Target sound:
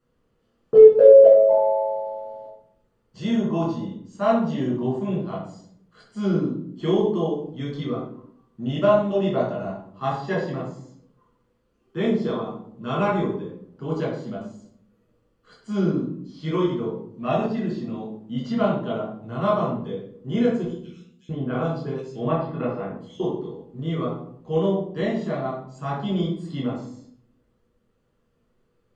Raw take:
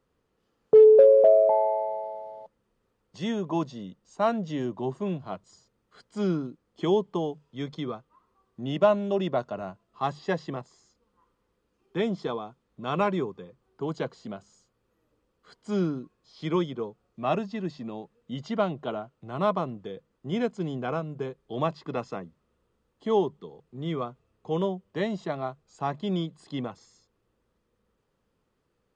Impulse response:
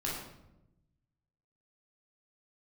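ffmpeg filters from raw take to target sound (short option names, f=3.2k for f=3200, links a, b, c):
-filter_complex "[0:a]asettb=1/sr,asplit=3[a][b][c];[a]atrim=end=20.644[d];[b]atrim=start=20.64:end=23.2,asetpts=PTS-STARTPTS,afade=t=in:d=0.004:c=qsin,afade=t=out:st=2.556:d=0.004:c=qsin,acrossover=split=3400[e][f];[e]adelay=650[g];[g][f]amix=inputs=2:normalize=0,atrim=end_sample=112896[h];[c]atrim=start=23.196[i];[d][h]acrossfade=d=0.004:c1=hsin:c2=qsin[j];[j][i]acrossfade=d=0.004:c1=qsin:c2=hsin[k];[1:a]atrim=start_sample=2205,asetrate=70560,aresample=44100[l];[k][l]afir=irnorm=-1:irlink=0,volume=2dB"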